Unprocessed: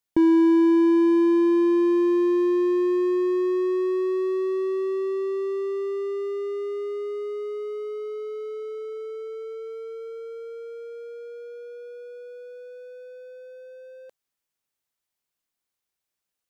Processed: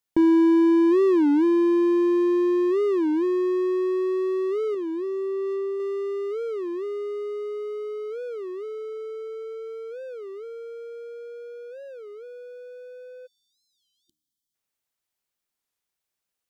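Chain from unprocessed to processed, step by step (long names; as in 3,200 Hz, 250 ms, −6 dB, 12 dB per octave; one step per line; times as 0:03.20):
0:04.77–0:05.80: tuned comb filter 78 Hz, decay 0.19 s, harmonics all, mix 60%
0:13.26–0:14.54: time-frequency box erased 350–3,000 Hz
hum removal 76.17 Hz, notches 4
wow of a warped record 33 1/3 rpm, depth 250 cents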